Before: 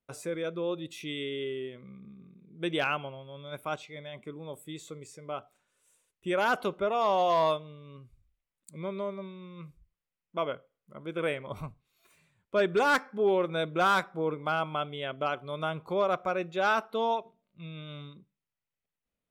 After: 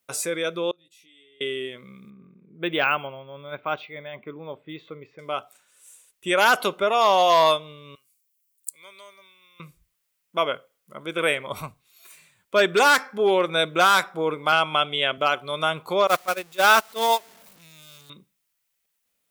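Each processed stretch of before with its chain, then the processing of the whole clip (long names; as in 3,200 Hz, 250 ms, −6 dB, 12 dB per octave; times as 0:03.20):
0:00.71–0:01.41: double-tracking delay 17 ms −3.5 dB + downward compressor 4 to 1, threshold −35 dBFS + noise gate −33 dBFS, range −27 dB
0:02.10–0:05.19: low-pass that shuts in the quiet parts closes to 1,700 Hz, open at −26.5 dBFS + high-frequency loss of the air 330 metres + linearly interpolated sample-rate reduction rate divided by 2×
0:07.95–0:09.60: first difference + notch filter 3,700 Hz
0:14.52–0:15.18: low-pass filter 11,000 Hz + parametric band 2,900 Hz +3 dB 0.85 octaves + multiband upward and downward compressor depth 40%
0:16.07–0:18.10: converter with a step at zero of −34.5 dBFS + noise gate −27 dBFS, range −21 dB
whole clip: spectral tilt +3 dB per octave; boost into a limiter +13.5 dB; level −4.5 dB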